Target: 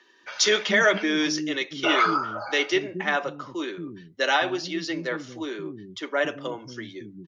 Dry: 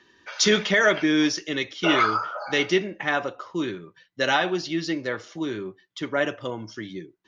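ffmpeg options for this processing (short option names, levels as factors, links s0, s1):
-filter_complex "[0:a]acrossover=split=170[s0][s1];[s0]acompressor=threshold=0.00355:ratio=6[s2];[s2][s1]amix=inputs=2:normalize=0,acrossover=split=270[s3][s4];[s3]adelay=230[s5];[s5][s4]amix=inputs=2:normalize=0"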